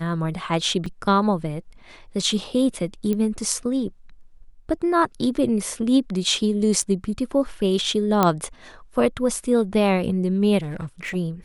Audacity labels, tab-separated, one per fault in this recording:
0.860000	0.860000	drop-out 4.6 ms
3.130000	3.130000	click −13 dBFS
6.820000	6.820000	drop-out 4.7 ms
8.230000	8.230000	click −4 dBFS
10.610000	11.160000	clipping −26 dBFS

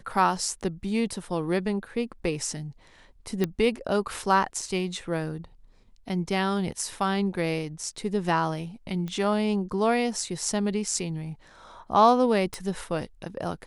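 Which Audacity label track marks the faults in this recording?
3.440000	3.440000	click −12 dBFS
9.080000	9.080000	click −22 dBFS
12.540000	12.540000	click −17 dBFS

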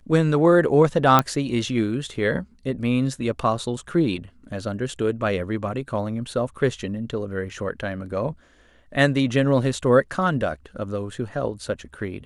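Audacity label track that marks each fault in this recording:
1.190000	1.190000	click −3 dBFS

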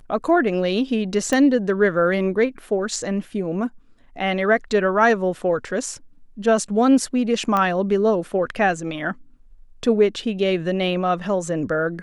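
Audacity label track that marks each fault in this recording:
1.330000	1.330000	click −9 dBFS
7.570000	7.570000	click −10 dBFS

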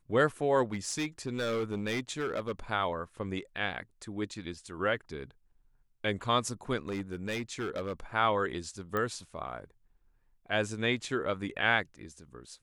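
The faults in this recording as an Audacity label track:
0.720000	2.520000	clipping −28 dBFS
6.880000	7.930000	clipping −30 dBFS
8.970000	8.970000	click −19 dBFS

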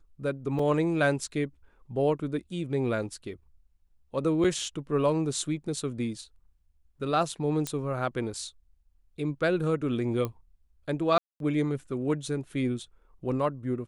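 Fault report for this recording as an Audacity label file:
0.590000	0.590000	drop-out 3.7 ms
4.440000	4.450000	drop-out 5.5 ms
7.670000	7.670000	click −15 dBFS
10.250000	10.250000	click −18 dBFS
11.180000	11.400000	drop-out 222 ms

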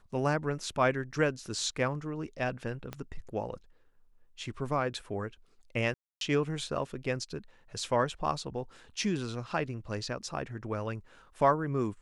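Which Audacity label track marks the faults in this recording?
2.930000	2.930000	click −23 dBFS
5.940000	6.210000	drop-out 272 ms

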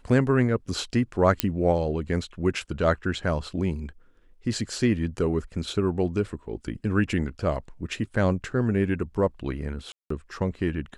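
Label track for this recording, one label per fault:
1.400000	1.400000	click −3 dBFS
9.920000	10.100000	drop-out 184 ms

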